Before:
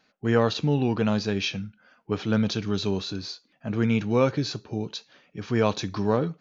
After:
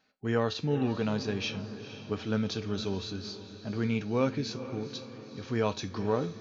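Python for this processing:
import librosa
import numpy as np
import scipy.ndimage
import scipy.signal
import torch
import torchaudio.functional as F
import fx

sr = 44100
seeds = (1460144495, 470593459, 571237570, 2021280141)

y = fx.comb_fb(x, sr, f0_hz=87.0, decay_s=0.27, harmonics='odd', damping=0.0, mix_pct=60)
y = fx.echo_diffused(y, sr, ms=464, feedback_pct=55, wet_db=-12.5)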